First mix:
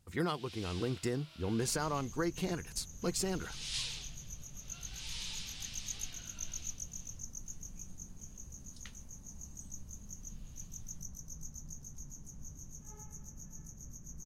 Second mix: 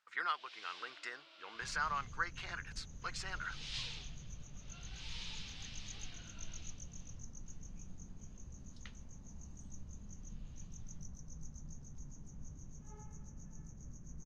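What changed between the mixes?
speech: add high-pass with resonance 1,400 Hz, resonance Q 2.3
master: add high-frequency loss of the air 150 metres

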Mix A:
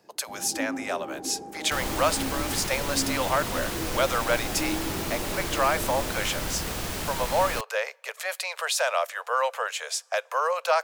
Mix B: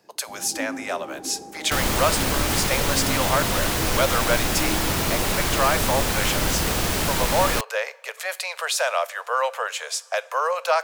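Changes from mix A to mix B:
speech: send +11.5 dB
second sound +8.5 dB

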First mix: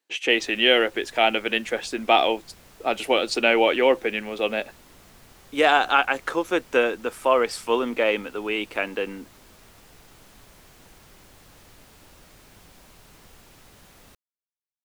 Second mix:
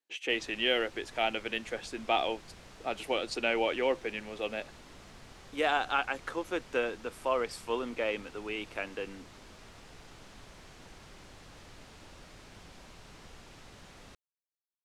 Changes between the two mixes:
speech −10.5 dB
background: add low-pass filter 6,700 Hz 12 dB per octave

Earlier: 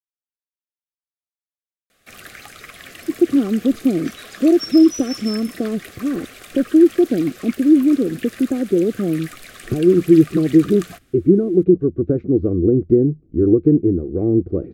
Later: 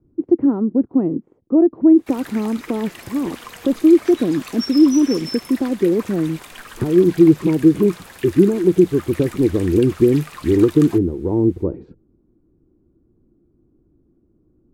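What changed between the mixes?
speech: entry −2.90 s
master: remove Butterworth band-reject 930 Hz, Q 2.5

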